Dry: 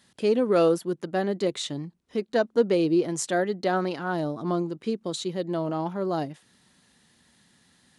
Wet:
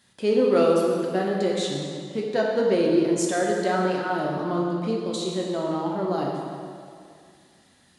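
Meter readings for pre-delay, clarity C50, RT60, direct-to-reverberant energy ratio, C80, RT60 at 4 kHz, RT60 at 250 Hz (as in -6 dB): 6 ms, 0.5 dB, 2.3 s, -2.5 dB, 2.0 dB, 1.8 s, 2.2 s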